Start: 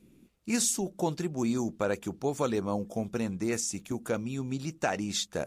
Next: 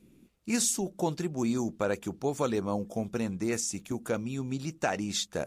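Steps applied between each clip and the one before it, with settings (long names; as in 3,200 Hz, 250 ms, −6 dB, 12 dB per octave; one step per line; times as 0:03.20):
no processing that can be heard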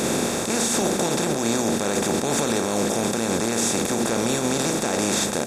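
compressor on every frequency bin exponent 0.2
brickwall limiter −16.5 dBFS, peak gain reduction 10.5 dB
double-tracking delay 35 ms −12 dB
level +4 dB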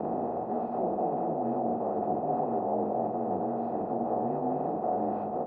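partials spread apart or drawn together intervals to 87%
transistor ladder low-pass 810 Hz, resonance 75%
level +3.5 dB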